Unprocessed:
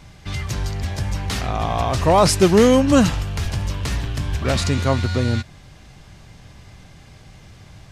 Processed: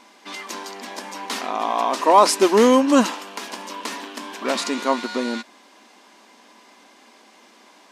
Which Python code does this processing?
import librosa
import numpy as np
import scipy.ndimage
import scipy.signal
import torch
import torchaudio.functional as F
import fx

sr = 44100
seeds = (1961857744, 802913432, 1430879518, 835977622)

y = fx.brickwall_highpass(x, sr, low_hz=210.0)
y = fx.peak_eq(y, sr, hz=990.0, db=10.0, octaves=0.24)
y = y * 10.0 ** (-1.0 / 20.0)